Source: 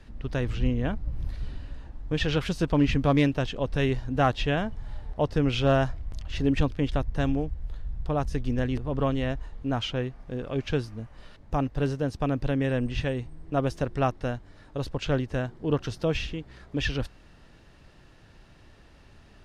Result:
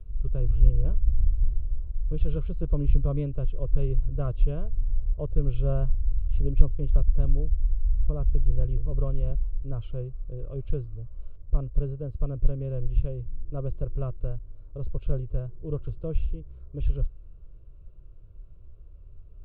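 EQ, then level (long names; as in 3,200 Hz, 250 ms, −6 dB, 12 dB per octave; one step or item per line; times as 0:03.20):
spectral tilt −4.5 dB per octave
tilt shelving filter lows +4 dB, about 1,100 Hz
phaser with its sweep stopped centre 1,200 Hz, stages 8
−14.5 dB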